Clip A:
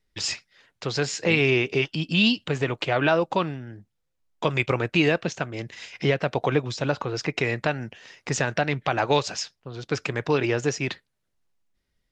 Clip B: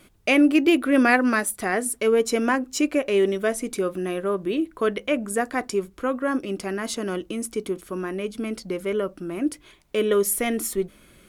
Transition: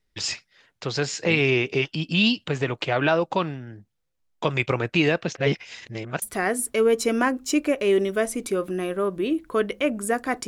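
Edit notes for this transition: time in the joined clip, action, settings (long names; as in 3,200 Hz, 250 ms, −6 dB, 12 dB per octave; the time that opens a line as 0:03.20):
clip A
0:05.35–0:06.22: reverse
0:06.22: continue with clip B from 0:01.49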